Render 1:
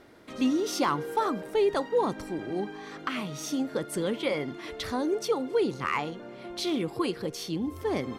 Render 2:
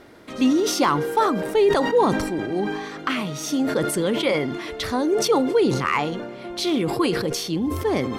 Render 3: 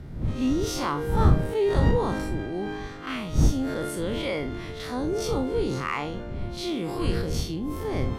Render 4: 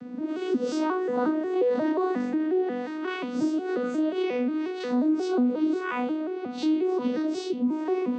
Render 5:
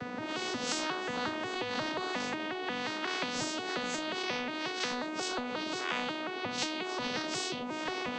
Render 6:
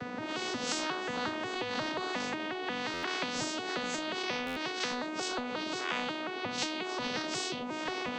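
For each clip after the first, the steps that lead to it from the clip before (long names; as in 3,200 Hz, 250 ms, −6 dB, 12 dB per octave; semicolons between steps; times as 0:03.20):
level that may fall only so fast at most 43 dB per second; level +6.5 dB
spectrum smeared in time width 83 ms; wind on the microphone 120 Hz −23 dBFS; level −5 dB
vocoder with an arpeggio as carrier major triad, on B3, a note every 179 ms; downward compressor 2 to 1, threshold −36 dBFS, peak gain reduction 9 dB; level +8.5 dB
high-frequency loss of the air 56 metres; every bin compressed towards the loudest bin 4 to 1; level −5 dB
buffer that repeats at 0:02.93/0:04.46, samples 512, times 8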